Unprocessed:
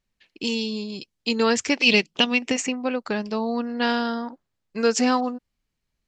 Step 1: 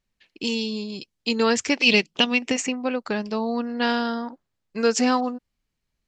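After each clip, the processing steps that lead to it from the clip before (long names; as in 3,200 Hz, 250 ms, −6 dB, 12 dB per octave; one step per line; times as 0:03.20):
no processing that can be heard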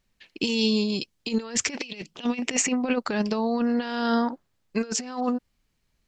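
compressor whose output falls as the input rises −27 dBFS, ratio −0.5
level +2 dB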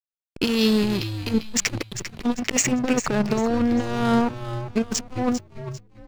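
slack as between gear wheels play −24.5 dBFS
echo with shifted repeats 397 ms, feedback 35%, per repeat −110 Hz, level −10.5 dB
level +4.5 dB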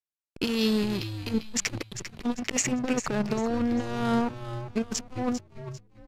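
downsampling to 32,000 Hz
level −5.5 dB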